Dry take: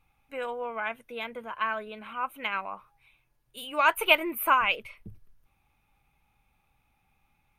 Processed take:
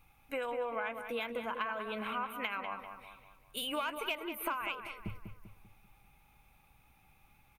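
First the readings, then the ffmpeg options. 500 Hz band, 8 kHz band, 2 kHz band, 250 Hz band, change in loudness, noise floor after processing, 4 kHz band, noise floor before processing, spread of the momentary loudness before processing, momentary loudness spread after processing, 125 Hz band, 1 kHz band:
−5.5 dB, −7.0 dB, −10.5 dB, −3.5 dB, −10.0 dB, −66 dBFS, −7.5 dB, −72 dBFS, 18 LU, 11 LU, can't be measured, −9.5 dB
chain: -filter_complex "[0:a]acrossover=split=7500[link_01][link_02];[link_02]acompressor=threshold=-47dB:ratio=4:attack=1:release=60[link_03];[link_01][link_03]amix=inputs=2:normalize=0,asplit=2[link_04][link_05];[link_05]asoftclip=type=hard:threshold=-16dB,volume=-8dB[link_06];[link_04][link_06]amix=inputs=2:normalize=0,highshelf=frequency=11000:gain=8,acompressor=threshold=-35dB:ratio=16,asplit=2[link_07][link_08];[link_08]adelay=196,lowpass=frequency=3300:poles=1,volume=-7.5dB,asplit=2[link_09][link_10];[link_10]adelay=196,lowpass=frequency=3300:poles=1,volume=0.46,asplit=2[link_11][link_12];[link_12]adelay=196,lowpass=frequency=3300:poles=1,volume=0.46,asplit=2[link_13][link_14];[link_14]adelay=196,lowpass=frequency=3300:poles=1,volume=0.46,asplit=2[link_15][link_16];[link_16]adelay=196,lowpass=frequency=3300:poles=1,volume=0.46[link_17];[link_07][link_09][link_11][link_13][link_15][link_17]amix=inputs=6:normalize=0,volume=1.5dB"

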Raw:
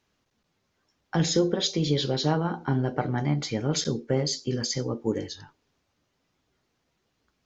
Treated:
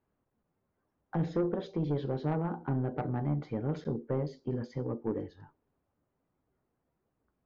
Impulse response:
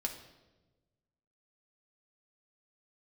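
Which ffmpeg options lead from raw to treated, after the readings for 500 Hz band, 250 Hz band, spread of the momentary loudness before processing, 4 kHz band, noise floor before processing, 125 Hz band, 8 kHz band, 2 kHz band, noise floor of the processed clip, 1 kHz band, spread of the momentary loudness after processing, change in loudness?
−6.5 dB, −6.0 dB, 6 LU, below −25 dB, −76 dBFS, −5.5 dB, can't be measured, −12.5 dB, −82 dBFS, −7.0 dB, 5 LU, −7.0 dB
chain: -af "lowpass=1100,asoftclip=type=tanh:threshold=-19dB,volume=-4dB"

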